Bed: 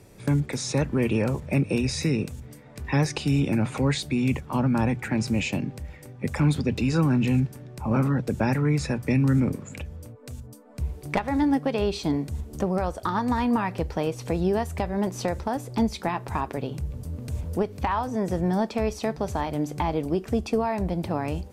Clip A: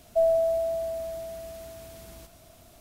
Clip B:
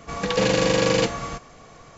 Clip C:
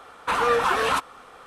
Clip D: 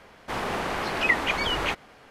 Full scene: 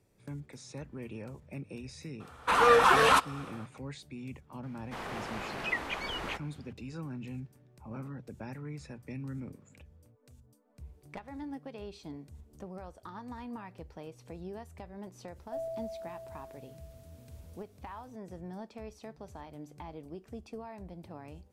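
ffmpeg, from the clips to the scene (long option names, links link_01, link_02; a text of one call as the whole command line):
ffmpeg -i bed.wav -i cue0.wav -i cue1.wav -i cue2.wav -i cue3.wav -filter_complex "[0:a]volume=-19dB[link_01];[3:a]dynaudnorm=framelen=210:gausssize=3:maxgain=11.5dB,atrim=end=1.46,asetpts=PTS-STARTPTS,volume=-7.5dB,afade=type=in:duration=0.004:curve=hsin,afade=type=out:start_time=1.456:duration=0.004:curve=hsin,adelay=2200[link_02];[4:a]atrim=end=2.1,asetpts=PTS-STARTPTS,volume=-10.5dB,afade=type=in:duration=0.004:curve=hsin,afade=type=out:start_time=2.096:duration=0.004:curve=hsin,adelay=4630[link_03];[1:a]atrim=end=2.8,asetpts=PTS-STARTPTS,volume=-16dB,afade=type=in:duration=0.004:curve=hsin,afade=type=out:start_time=2.796:duration=0.004:curve=hsin,adelay=15360[link_04];[link_01][link_02][link_03][link_04]amix=inputs=4:normalize=0" out.wav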